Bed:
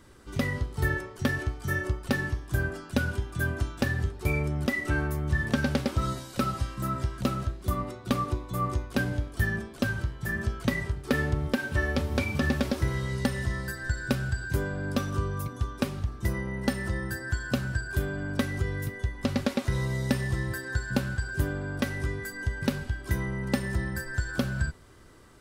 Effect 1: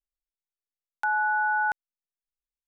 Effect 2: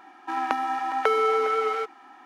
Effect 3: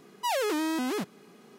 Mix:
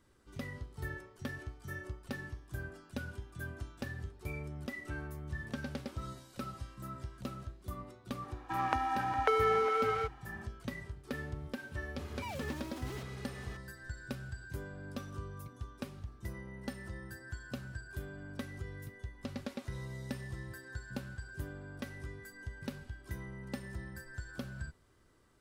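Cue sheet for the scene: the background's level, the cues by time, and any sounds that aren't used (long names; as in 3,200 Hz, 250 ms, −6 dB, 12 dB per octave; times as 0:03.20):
bed −14 dB
0:08.22: mix in 2 −6.5 dB
0:11.99: mix in 3 −17.5 dB + mid-hump overdrive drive 33 dB, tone 5,000 Hz, clips at −22 dBFS
not used: 1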